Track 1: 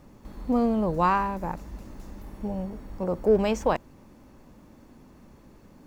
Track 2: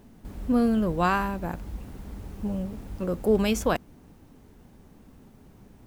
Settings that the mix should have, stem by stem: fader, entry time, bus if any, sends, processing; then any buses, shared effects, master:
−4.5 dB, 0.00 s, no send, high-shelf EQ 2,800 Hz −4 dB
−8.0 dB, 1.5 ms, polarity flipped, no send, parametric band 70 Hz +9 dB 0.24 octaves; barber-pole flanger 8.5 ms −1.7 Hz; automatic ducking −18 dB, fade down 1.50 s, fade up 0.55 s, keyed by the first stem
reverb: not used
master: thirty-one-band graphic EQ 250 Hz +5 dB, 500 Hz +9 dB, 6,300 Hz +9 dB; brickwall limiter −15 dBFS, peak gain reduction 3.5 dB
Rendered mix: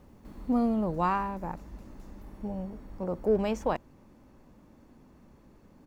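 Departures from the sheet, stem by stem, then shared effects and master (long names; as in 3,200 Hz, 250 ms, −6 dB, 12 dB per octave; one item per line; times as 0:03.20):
stem 2: missing barber-pole flanger 8.5 ms −1.7 Hz
master: missing thirty-one-band graphic EQ 250 Hz +5 dB, 500 Hz +9 dB, 6,300 Hz +9 dB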